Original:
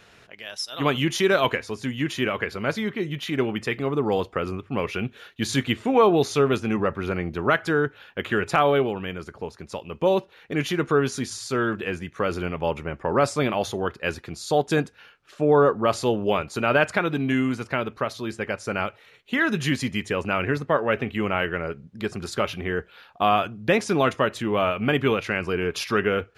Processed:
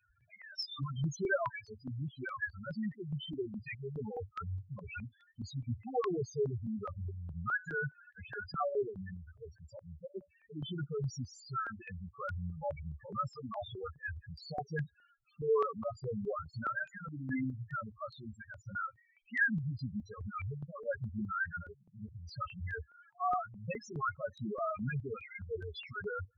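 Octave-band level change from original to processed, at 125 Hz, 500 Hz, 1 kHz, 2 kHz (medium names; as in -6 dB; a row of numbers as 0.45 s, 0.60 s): -10.0 dB, -16.5 dB, -14.0 dB, -12.0 dB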